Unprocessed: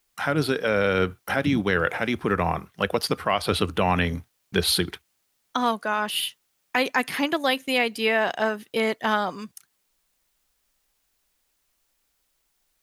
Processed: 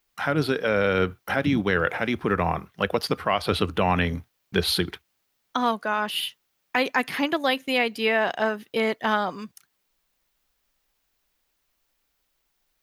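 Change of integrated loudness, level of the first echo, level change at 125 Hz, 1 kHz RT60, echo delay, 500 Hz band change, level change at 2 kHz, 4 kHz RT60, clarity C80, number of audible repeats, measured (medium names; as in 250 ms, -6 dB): -0.5 dB, no echo, 0.0 dB, no reverb, no echo, 0.0 dB, -0.5 dB, no reverb, no reverb, no echo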